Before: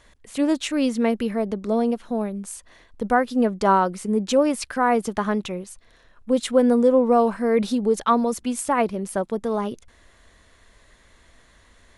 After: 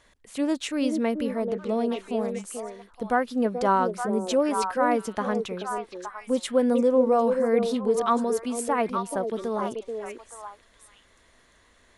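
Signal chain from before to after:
low-shelf EQ 110 Hz −6.5 dB
on a send: echo through a band-pass that steps 434 ms, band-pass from 400 Hz, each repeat 1.4 octaves, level −2 dB
on the sum: level −4 dB

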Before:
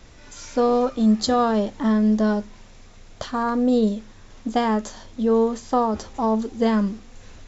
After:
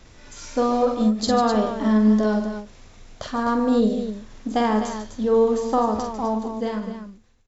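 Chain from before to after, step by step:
fade-out on the ending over 1.59 s
loudspeakers that aren't time-aligned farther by 16 metres −6 dB, 50 metres −11 dB, 87 metres −9 dB
every ending faded ahead of time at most 150 dB per second
level −1 dB

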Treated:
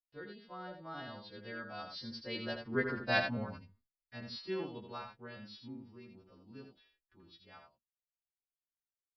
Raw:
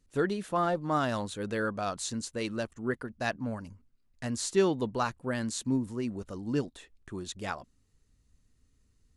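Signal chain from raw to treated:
every partial snapped to a pitch grid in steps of 2 semitones
source passing by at 0:03.02, 14 m/s, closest 3.6 metres
noise gate with hold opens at −60 dBFS
on a send: single-tap delay 82 ms −7 dB
on the sum: downsampling to 11,025 Hz
level +1.5 dB

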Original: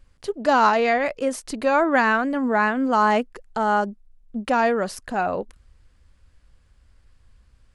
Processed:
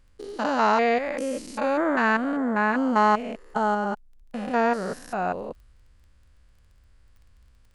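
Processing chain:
spectrum averaged block by block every 200 ms
surface crackle 16 per second −48 dBFS

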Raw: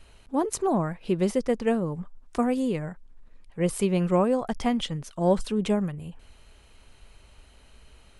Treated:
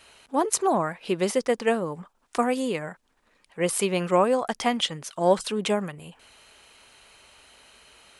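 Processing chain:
high-pass filter 770 Hz 6 dB per octave
level +7.5 dB

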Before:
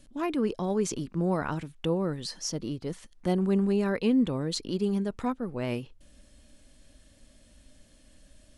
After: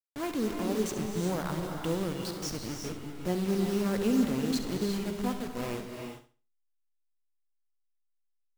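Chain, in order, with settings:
hold until the input has moved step −31 dBFS
flutter between parallel walls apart 11.8 metres, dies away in 0.36 s
reverb whose tail is shaped and stops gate 410 ms rising, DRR 4 dB
level −3.5 dB

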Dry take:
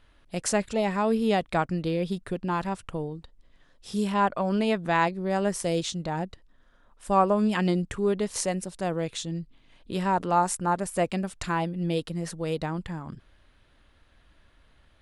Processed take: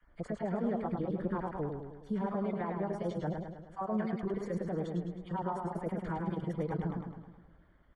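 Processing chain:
time-frequency cells dropped at random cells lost 21%
parametric band 95 Hz −9.5 dB 0.31 octaves
downward compressor 5 to 1, threshold −28 dBFS, peak gain reduction 11.5 dB
brickwall limiter −25 dBFS, peak gain reduction 9 dB
tape wow and flutter 81 cents
Savitzky-Golay smoothing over 41 samples
multiband delay without the direct sound highs, lows 40 ms, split 1,200 Hz
phase-vocoder stretch with locked phases 0.53×
feedback echo with a swinging delay time 105 ms, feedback 56%, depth 73 cents, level −5 dB

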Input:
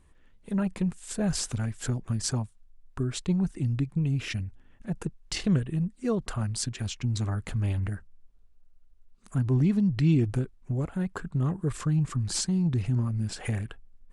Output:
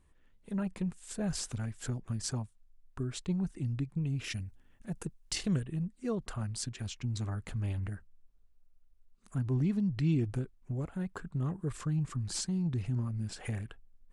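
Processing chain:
0:04.24–0:05.63: high-shelf EQ 6,100 Hz +11 dB
level −6.5 dB

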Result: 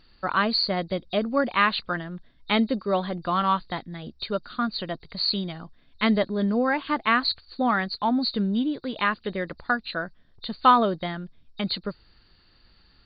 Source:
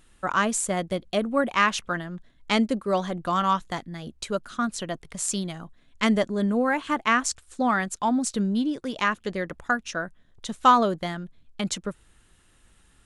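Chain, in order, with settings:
hearing-aid frequency compression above 3,600 Hz 4 to 1

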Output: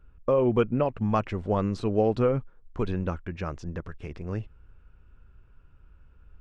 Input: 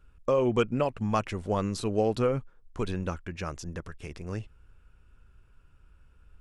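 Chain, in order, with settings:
head-to-tape spacing loss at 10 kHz 30 dB, from 0:00.87 at 10 kHz 22 dB
level +3.5 dB

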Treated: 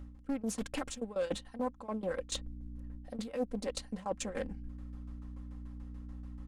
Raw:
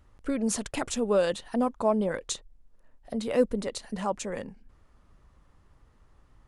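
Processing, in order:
shaped tremolo saw down 6.9 Hz, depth 90%
in parallel at −5 dB: slack as between gear wheels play −39 dBFS
on the sum: mains hum 60 Hz, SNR 18 dB
reversed playback
downward compressor 8 to 1, threshold −39 dBFS, peak gain reduction 21.5 dB
reversed playback
comb filter 3.8 ms, depth 57%
highs frequency-modulated by the lows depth 0.31 ms
level +3.5 dB

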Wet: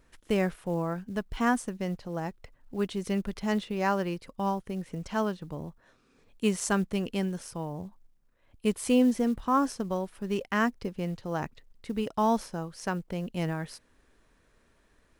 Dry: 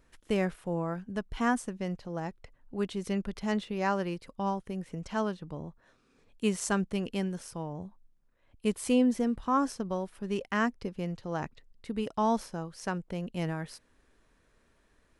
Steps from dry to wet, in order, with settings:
floating-point word with a short mantissa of 4 bits
level +2 dB

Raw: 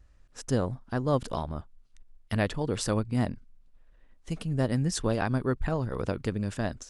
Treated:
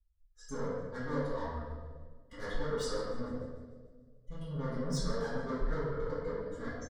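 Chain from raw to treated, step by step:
spectral dynamics exaggerated over time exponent 2
low-pass filter 2,300 Hz 6 dB per octave
parametric band 250 Hz +2 dB
comb filter 2.4 ms, depth 96%
brickwall limiter −23.5 dBFS, peak gain reduction 7.5 dB
soft clipping −39.5 dBFS, distortion −5 dB
phaser with its sweep stopped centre 520 Hz, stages 8
feedback echo with a high-pass in the loop 148 ms, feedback 56%, high-pass 570 Hz, level −20.5 dB
convolution reverb RT60 1.6 s, pre-delay 3 ms, DRR −13.5 dB
level −3 dB

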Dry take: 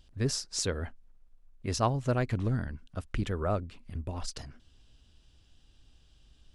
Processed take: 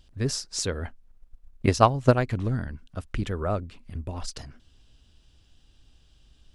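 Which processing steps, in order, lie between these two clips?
0:00.85–0:02.28: transient designer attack +12 dB, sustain −1 dB
level +2.5 dB

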